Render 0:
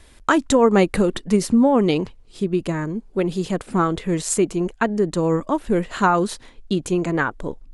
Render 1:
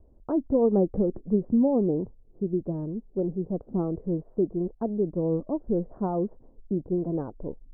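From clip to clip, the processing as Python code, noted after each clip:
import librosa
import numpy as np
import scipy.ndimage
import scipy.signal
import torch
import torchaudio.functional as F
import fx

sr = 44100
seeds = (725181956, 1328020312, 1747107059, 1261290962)

y = fx.wiener(x, sr, points=9)
y = scipy.signal.sosfilt(scipy.signal.cheby2(4, 70, 3000.0, 'lowpass', fs=sr, output='sos'), y)
y = y * librosa.db_to_amplitude(-6.0)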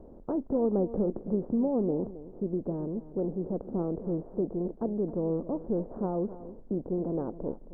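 y = fx.bin_compress(x, sr, power=0.6)
y = y + 10.0 ** (-15.0 / 20.0) * np.pad(y, (int(268 * sr / 1000.0), 0))[:len(y)]
y = y * librosa.db_to_amplitude(-7.0)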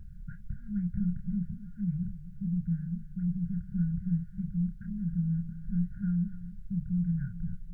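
y = fx.brickwall_bandstop(x, sr, low_hz=190.0, high_hz=1400.0)
y = fx.doubler(y, sr, ms=29.0, db=-5.5)
y = y * librosa.db_to_amplitude(8.0)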